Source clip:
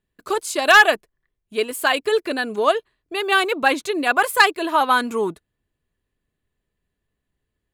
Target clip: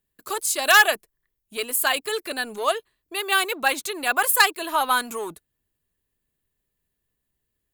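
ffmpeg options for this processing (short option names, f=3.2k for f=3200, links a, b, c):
-filter_complex "[0:a]aemphasis=mode=production:type=50fm,acrossover=split=490|2600[a][b][c];[a]asoftclip=type=tanh:threshold=-33dB[d];[d][b][c]amix=inputs=3:normalize=0,volume=-4dB"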